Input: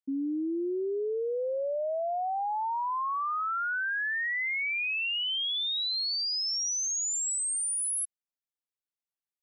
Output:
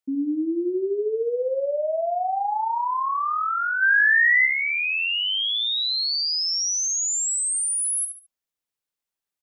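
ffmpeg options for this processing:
ffmpeg -i in.wav -filter_complex "[0:a]asplit=3[link_01][link_02][link_03];[link_01]afade=type=out:start_time=3.81:duration=0.02[link_04];[link_02]acontrast=87,afade=type=in:start_time=3.81:duration=0.02,afade=type=out:start_time=4.45:duration=0.02[link_05];[link_03]afade=type=in:start_time=4.45:duration=0.02[link_06];[link_04][link_05][link_06]amix=inputs=3:normalize=0,aecho=1:1:71|142|213:0.398|0.115|0.0335,volume=5.5dB" out.wav

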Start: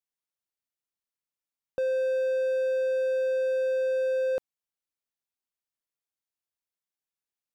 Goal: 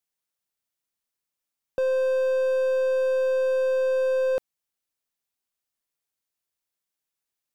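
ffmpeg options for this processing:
ffmpeg -i in.wav -filter_complex "[0:a]highshelf=frequency=5300:gain=3,asplit=2[link_01][link_02];[link_02]aeval=exprs='clip(val(0),-1,0.00562)':channel_layout=same,volume=-10dB[link_03];[link_01][link_03]amix=inputs=2:normalize=0,volume=2dB" out.wav

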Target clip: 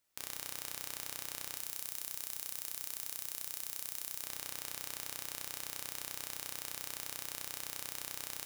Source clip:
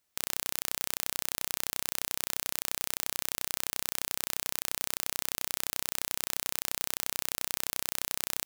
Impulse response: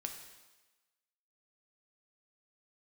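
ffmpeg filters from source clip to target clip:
-filter_complex "[0:a]asettb=1/sr,asplit=3[link_01][link_02][link_03];[link_01]atrim=end=1.544[link_04];[link_02]atrim=start=1.54:end=4.24,asetpts=PTS-STARTPTS,afade=type=in:duration=0.004:curve=qsin,afade=type=out:start_time=2.696:duration=0.004:curve=qsin,highshelf=frequency=6400:gain=3[link_05];[link_03]atrim=start=4.236[link_06];[link_04][link_05]acrossfade=duration=0.004:curve1=hsin:curve2=qsin[link_07];[link_07][link_06]acrossfade=duration=0.004:curve1=qsin:curve2=hsin,asoftclip=type=tanh:threshold=-10dB[link_08];[1:a]atrim=start_sample=2205[link_09];[link_08][link_09]afir=irnorm=-1:irlink=0"

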